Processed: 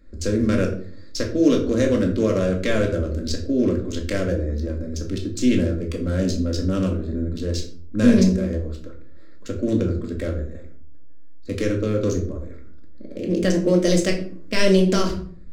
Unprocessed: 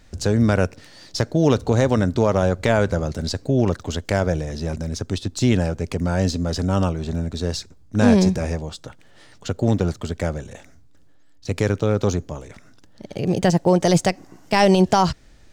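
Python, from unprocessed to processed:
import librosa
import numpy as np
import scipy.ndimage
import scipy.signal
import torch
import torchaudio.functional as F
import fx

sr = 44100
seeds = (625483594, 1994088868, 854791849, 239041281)

y = fx.wiener(x, sr, points=15)
y = fx.fixed_phaser(y, sr, hz=340.0, stages=4)
y = fx.room_shoebox(y, sr, seeds[0], volume_m3=510.0, walls='furnished', distance_m=2.2)
y = y * 10.0 ** (-1.0 / 20.0)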